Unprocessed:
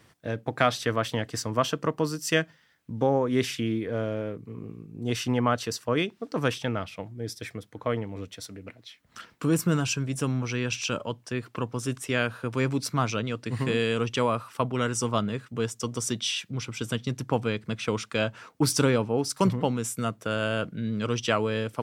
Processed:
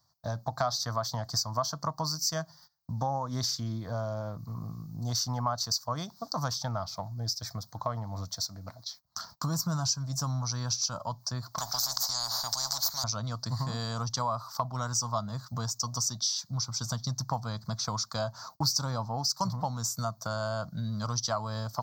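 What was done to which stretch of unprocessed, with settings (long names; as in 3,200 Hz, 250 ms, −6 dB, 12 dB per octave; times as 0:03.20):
0:04.39–0:06.48: high-shelf EQ 6,700 Hz +3.5 dB
0:11.58–0:13.04: every bin compressed towards the loudest bin 10 to 1
whole clip: noise gate −53 dBFS, range −20 dB; drawn EQ curve 150 Hz 0 dB, 430 Hz −22 dB, 660 Hz +3 dB, 1,100 Hz +4 dB, 2,700 Hz −27 dB, 4,500 Hz +13 dB, 6,600 Hz +8 dB, 10,000 Hz −16 dB, 15,000 Hz +14 dB; downward compressor 2.5 to 1, threshold −37 dBFS; level +5 dB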